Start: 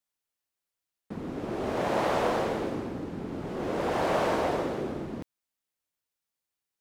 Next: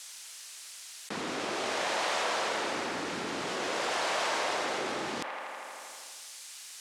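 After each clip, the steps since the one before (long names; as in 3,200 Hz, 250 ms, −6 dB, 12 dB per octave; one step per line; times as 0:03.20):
meter weighting curve ITU-R 468
on a send: delay with a band-pass on its return 81 ms, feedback 65%, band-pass 1,200 Hz, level −7 dB
on the sum: envelope flattener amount 70%
level −4.5 dB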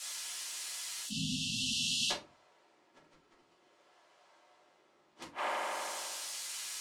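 time-frequency box erased 0:01.04–0:02.11, 260–2,600 Hz
gate with flip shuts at −25 dBFS, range −41 dB
rectangular room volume 120 cubic metres, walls furnished, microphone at 3 metres
level −1.5 dB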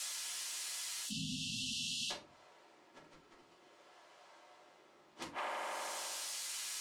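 downward compressor 3 to 1, threshold −45 dBFS, peak gain reduction 12 dB
level +4 dB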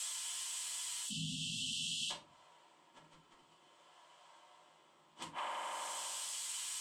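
thirty-one-band graphic EQ 160 Hz +8 dB, 400 Hz −5 dB, 1,000 Hz +9 dB, 3,150 Hz +9 dB, 8,000 Hz +11 dB
level −5 dB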